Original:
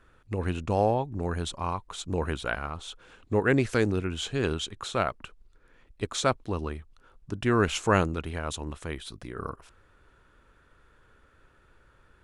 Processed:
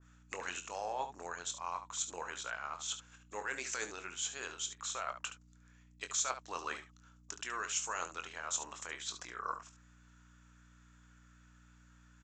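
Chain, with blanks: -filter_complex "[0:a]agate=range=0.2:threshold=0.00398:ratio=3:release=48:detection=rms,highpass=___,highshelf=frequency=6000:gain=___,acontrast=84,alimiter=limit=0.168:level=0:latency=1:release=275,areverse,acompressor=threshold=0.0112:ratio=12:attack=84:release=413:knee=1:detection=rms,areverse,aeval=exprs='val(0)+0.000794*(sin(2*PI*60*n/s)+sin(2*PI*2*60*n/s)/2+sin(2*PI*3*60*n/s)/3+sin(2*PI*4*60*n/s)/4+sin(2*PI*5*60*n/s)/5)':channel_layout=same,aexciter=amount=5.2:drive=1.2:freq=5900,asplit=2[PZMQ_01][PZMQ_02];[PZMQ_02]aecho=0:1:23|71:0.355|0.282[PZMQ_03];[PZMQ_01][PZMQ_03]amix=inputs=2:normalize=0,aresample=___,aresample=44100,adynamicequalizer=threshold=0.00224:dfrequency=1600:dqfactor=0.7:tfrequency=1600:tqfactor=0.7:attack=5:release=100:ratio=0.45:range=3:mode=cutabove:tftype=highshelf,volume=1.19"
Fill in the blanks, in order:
1100, 11.5, 16000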